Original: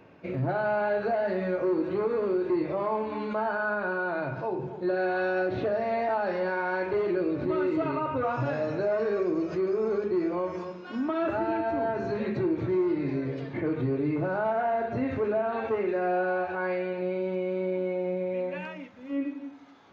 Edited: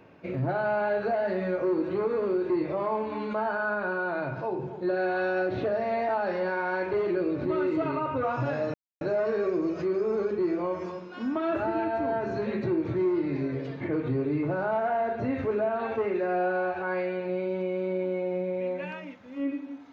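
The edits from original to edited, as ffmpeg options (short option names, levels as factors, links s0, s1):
-filter_complex "[0:a]asplit=2[s0][s1];[s0]atrim=end=8.74,asetpts=PTS-STARTPTS,afade=t=out:st=8.736:d=0.004:c=hsin,apad=pad_dur=0.27[s2];[s1]atrim=start=8.74,asetpts=PTS-STARTPTS,afade=t=in:d=0.004:c=hsin[s3];[s2][s3]concat=n=2:v=0:a=1"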